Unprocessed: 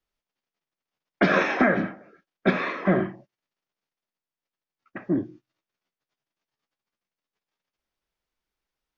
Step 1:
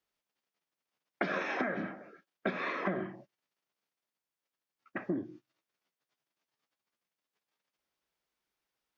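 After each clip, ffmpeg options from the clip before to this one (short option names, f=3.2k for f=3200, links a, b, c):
-af "highpass=f=180:p=1,acompressor=threshold=-30dB:ratio=12"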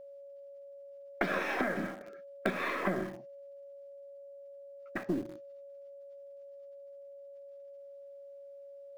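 -filter_complex "[0:a]aeval=exprs='val(0)+0.00447*sin(2*PI*560*n/s)':c=same,asplit=2[a][b];[b]acrusher=bits=4:dc=4:mix=0:aa=0.000001,volume=-10dB[c];[a][c]amix=inputs=2:normalize=0"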